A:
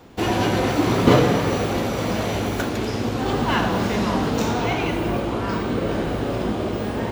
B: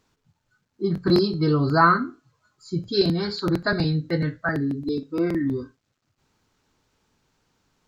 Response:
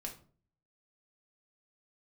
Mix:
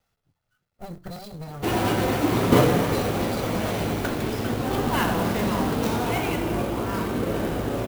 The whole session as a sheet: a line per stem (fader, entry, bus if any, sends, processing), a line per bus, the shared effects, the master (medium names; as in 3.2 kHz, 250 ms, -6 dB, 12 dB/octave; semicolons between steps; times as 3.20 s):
-2.5 dB, 1.45 s, no send, none
-4.5 dB, 0.00 s, no send, comb filter that takes the minimum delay 1.5 ms; compression 12:1, threshold -29 dBFS, peak gain reduction 16 dB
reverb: none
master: sampling jitter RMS 0.028 ms